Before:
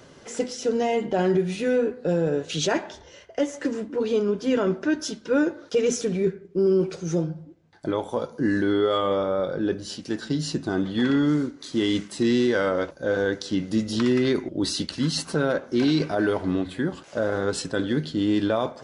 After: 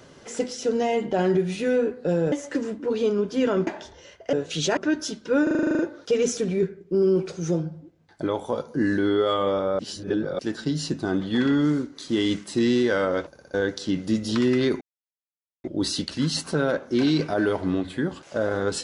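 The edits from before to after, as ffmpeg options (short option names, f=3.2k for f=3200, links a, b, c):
-filter_complex "[0:a]asplit=21[a][b][c][d][e][f][g][h][i][j][k][l][m][n][o][p][q][r][s][t][u];[a]atrim=end=2.322[v];[b]atrim=start=3.418:end=4.772[w];[c]atrim=start=2.758:end=3.422[x];[d]atrim=start=2.318:end=2.762[y];[e]atrim=start=4.768:end=5.472[z];[f]atrim=start=5.428:end=5.472[aa];[g]atrim=start=5.428:end=5.472[ab];[h]atrim=start=5.428:end=5.472[ac];[i]atrim=start=5.428:end=5.472[ad];[j]atrim=start=5.428:end=5.472[ae];[k]atrim=start=5.428:end=5.472[af];[l]atrim=start=5.428:end=5.472[ag];[m]atrim=start=5.428:end=5.472[ah];[n]atrim=start=5.428:end=9.432[ai];[o]atrim=start=9.428:end=10.032,asetpts=PTS-STARTPTS,areverse[aj];[p]atrim=start=10.028:end=13.002[ak];[q]atrim=start=12.938:end=13.002[al];[r]atrim=start=12.938:end=13.002[am];[s]atrim=start=12.938:end=13.002[an];[t]atrim=start=13.178:end=14.45,asetpts=PTS-STARTPTS,afade=t=out:st=1.268:d=0.004:c=hsin,apad=pad_dur=0.83[ao];[u]atrim=start=14.45,asetpts=PTS-STARTPTS,afade=t=in:d=0.004:c=hsin[ap];[v][w]acrossfade=d=0.004:c1=hsin:c2=hsin[aq];[aq][x]acrossfade=d=0.004:c1=hsin:c2=hsin[ar];[ar][y]acrossfade=d=0.004:c1=hsin:c2=hsin[as];[as][z]acrossfade=d=0.004:c1=hsin:c2=hsin[at];[at][aa]acrossfade=d=0.004:c1=hsin:c2=hsin[au];[au][ab]acrossfade=d=0.004:c1=hsin:c2=hsin[av];[av][ac]acrossfade=d=0.004:c1=hsin:c2=hsin[aw];[aw][ad]acrossfade=d=0.004:c1=hsin:c2=hsin[ax];[ax][ae]acrossfade=d=0.004:c1=hsin:c2=hsin[ay];[ay][af]acrossfade=d=0.004:c1=hsin:c2=hsin[az];[az][ag]acrossfade=d=0.004:c1=hsin:c2=hsin[ba];[ba][ah]acrossfade=d=0.004:c1=hsin:c2=hsin[bb];[bb][ai]acrossfade=d=0.004:c1=hsin:c2=hsin[bc];[bc][aj]acrossfade=d=0.004:c1=hsin:c2=hsin[bd];[bd][ak]acrossfade=d=0.004:c1=hsin:c2=hsin[be];[be][al]acrossfade=d=0.004:c1=hsin:c2=hsin[bf];[bf][am]acrossfade=d=0.004:c1=hsin:c2=hsin[bg];[bg][an]acrossfade=d=0.004:c1=hsin:c2=hsin[bh];[ao][ap]concat=n=2:v=0:a=1[bi];[bh][bi]acrossfade=d=0.004:c1=hsin:c2=hsin"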